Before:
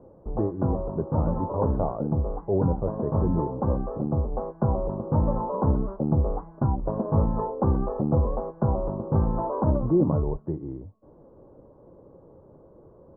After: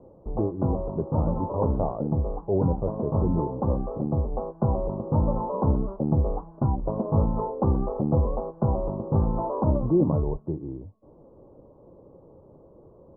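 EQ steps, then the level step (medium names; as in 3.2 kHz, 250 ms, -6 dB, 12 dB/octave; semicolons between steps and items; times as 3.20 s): low-pass 1.2 kHz 24 dB/octave; 0.0 dB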